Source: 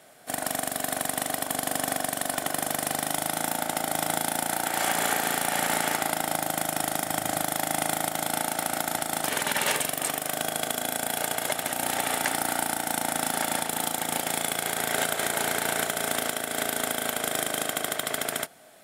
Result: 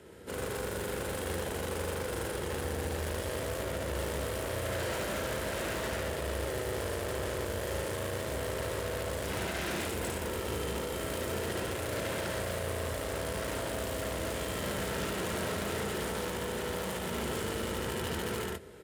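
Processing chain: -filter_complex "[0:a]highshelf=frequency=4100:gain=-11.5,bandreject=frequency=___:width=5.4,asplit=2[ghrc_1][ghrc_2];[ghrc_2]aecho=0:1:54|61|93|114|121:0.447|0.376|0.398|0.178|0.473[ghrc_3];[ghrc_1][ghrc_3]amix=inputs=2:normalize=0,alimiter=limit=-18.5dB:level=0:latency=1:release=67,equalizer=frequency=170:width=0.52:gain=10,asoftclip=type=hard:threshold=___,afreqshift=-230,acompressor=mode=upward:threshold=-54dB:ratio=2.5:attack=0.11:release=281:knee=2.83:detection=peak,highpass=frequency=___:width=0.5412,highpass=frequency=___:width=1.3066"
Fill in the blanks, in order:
1400, -31.5dB, 66, 66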